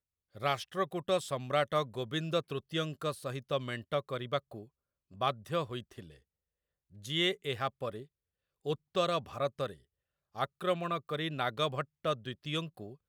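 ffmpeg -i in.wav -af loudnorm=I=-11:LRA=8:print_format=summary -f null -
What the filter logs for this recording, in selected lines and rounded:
Input Integrated:    -34.9 LUFS
Input True Peak:     -15.8 dBTP
Input LRA:             2.8 LU
Input Threshold:     -45.5 LUFS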